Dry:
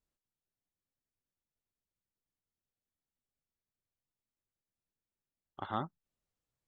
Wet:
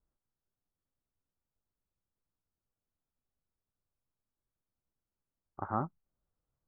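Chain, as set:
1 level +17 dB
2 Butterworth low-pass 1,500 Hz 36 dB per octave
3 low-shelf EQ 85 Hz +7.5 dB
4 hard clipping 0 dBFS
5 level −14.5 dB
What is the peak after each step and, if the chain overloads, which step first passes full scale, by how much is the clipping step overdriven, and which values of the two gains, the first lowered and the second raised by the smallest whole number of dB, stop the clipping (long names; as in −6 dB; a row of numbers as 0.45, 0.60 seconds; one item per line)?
−2.0, −3.0, −2.5, −2.5, −17.0 dBFS
no step passes full scale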